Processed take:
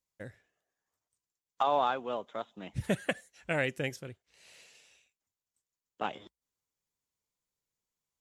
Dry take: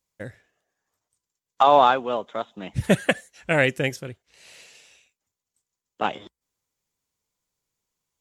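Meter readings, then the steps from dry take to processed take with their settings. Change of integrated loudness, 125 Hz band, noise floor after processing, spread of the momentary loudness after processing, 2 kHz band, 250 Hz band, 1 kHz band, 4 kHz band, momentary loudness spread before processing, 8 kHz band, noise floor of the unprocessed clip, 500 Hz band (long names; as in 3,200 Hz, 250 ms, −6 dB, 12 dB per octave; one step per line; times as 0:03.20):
−11.5 dB, −10.5 dB, below −85 dBFS, 20 LU, −10.5 dB, −10.5 dB, −12.0 dB, −11.0 dB, 24 LU, −10.0 dB, below −85 dBFS, −11.0 dB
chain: downward compressor 1.5 to 1, threshold −21 dBFS, peak gain reduction 4 dB
level −8.5 dB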